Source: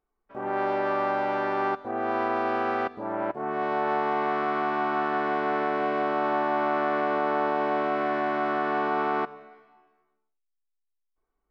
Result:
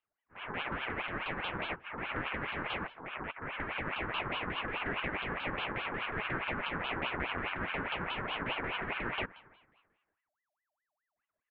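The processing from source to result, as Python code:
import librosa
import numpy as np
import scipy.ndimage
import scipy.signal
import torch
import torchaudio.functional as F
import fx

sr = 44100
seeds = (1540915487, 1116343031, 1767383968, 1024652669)

y = fx.pitch_ramps(x, sr, semitones=-10.5, every_ms=180)
y = fx.curve_eq(y, sr, hz=(620.0, 940.0, 2200.0, 3700.0, 6400.0), db=(0, 8, 1, -12, -18))
y = fx.ring_lfo(y, sr, carrier_hz=1300.0, swing_pct=55, hz=4.8)
y = y * librosa.db_to_amplitude(-8.5)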